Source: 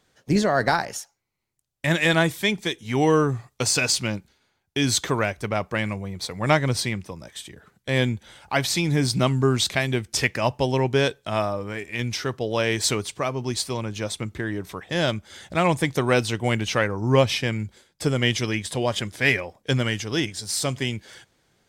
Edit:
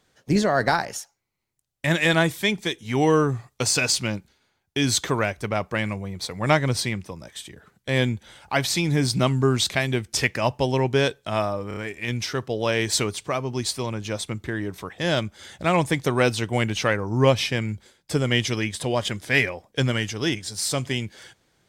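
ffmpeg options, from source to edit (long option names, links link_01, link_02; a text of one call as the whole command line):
ffmpeg -i in.wav -filter_complex "[0:a]asplit=4[link_01][link_02][link_03][link_04];[link_01]atrim=end=11.712[link_05];[link_02]atrim=start=11.678:end=11.712[link_06];[link_03]atrim=start=11.678:end=11.712[link_07];[link_04]atrim=start=11.678[link_08];[link_05][link_06]acrossfade=duration=0.004:curve1=hsin:curve2=hsin[link_09];[link_09][link_07]acrossfade=duration=0.004:curve1=hsin:curve2=hsin[link_10];[link_10][link_08]acrossfade=duration=0.004:curve1=hsin:curve2=hsin" out.wav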